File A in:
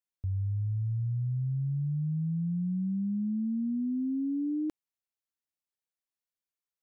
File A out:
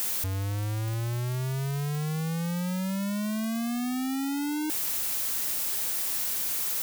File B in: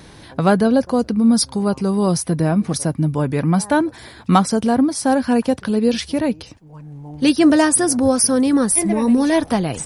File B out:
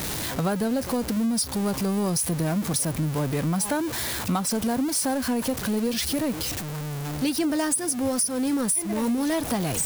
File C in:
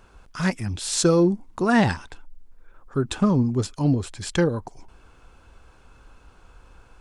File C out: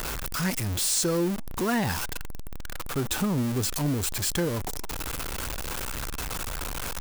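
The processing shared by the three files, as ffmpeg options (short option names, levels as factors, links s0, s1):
-af "aeval=exprs='val(0)+0.5*0.1*sgn(val(0))':c=same,highshelf=f=7300:g=10.5,acompressor=threshold=0.2:ratio=10,volume=0.422"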